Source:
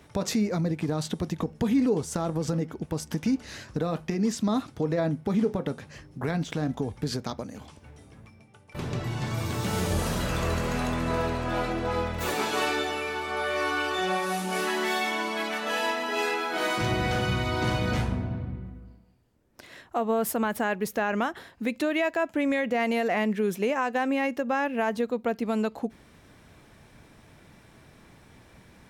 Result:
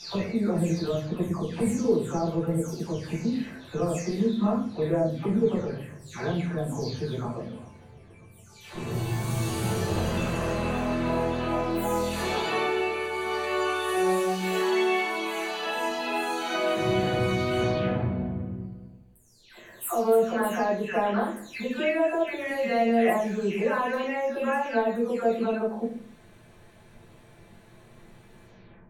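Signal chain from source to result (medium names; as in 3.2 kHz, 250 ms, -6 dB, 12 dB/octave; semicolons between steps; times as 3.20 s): delay that grows with frequency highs early, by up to 434 ms; band-stop 5.2 kHz, Q 7.9; reverberation RT60 0.50 s, pre-delay 5 ms, DRR -5 dB; trim -5.5 dB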